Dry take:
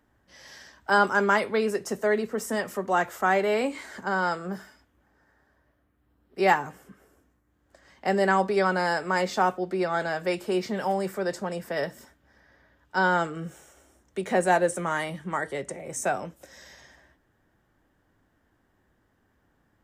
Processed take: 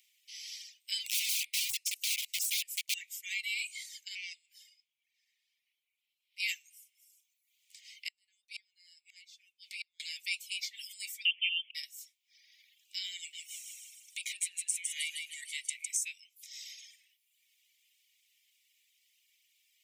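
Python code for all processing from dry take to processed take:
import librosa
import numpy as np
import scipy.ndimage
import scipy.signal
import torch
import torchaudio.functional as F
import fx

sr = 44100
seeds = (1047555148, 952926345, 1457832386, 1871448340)

y = fx.chain(x, sr, fx.high_shelf(hz=4300.0, db=5.0),
    fx.overflow_wrap(gain_db=25.0), at=(1.06, 2.94))
y = fx.chain(y, sr, fx.tube_stage(drive_db=20.0, bias=0.8),
    fx.high_shelf(hz=5500.0, db=-10.5), at=(4.15, 6.4))
y = fx.chain(y, sr, fx.cheby2_bandstop(low_hz=110.0, high_hz=580.0, order=4, stop_db=40),
    fx.high_shelf(hz=8700.0, db=-6.5),
    fx.gate_flip(shuts_db=-30.0, range_db=-29), at=(8.08, 10.0))
y = fx.chain(y, sr, fx.delta_mod(bps=64000, step_db=-43.5),
    fx.freq_invert(carrier_hz=3300),
    fx.auto_swell(attack_ms=534.0), at=(11.25, 11.75))
y = fx.chain(y, sr, fx.over_compress(threshold_db=-28.0, ratio=-1.0),
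    fx.echo_thinned(ms=156, feedback_pct=44, hz=1000.0, wet_db=-3.5), at=(13.17, 15.97))
y = fx.dereverb_blind(y, sr, rt60_s=0.82)
y = scipy.signal.sosfilt(scipy.signal.butter(16, 2200.0, 'highpass', fs=sr, output='sos'), y)
y = fx.band_squash(y, sr, depth_pct=40)
y = y * librosa.db_to_amplitude(2.5)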